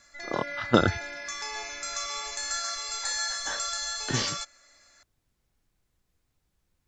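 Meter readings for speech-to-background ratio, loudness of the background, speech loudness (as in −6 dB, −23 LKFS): 3.0 dB, −32.0 LKFS, −29.0 LKFS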